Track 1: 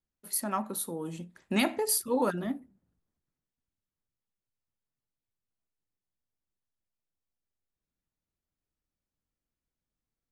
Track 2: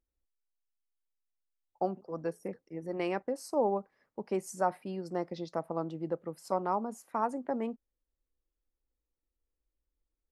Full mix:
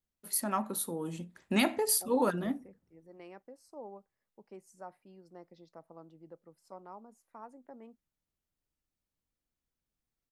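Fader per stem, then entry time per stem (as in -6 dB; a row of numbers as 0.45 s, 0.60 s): -0.5 dB, -17.5 dB; 0.00 s, 0.20 s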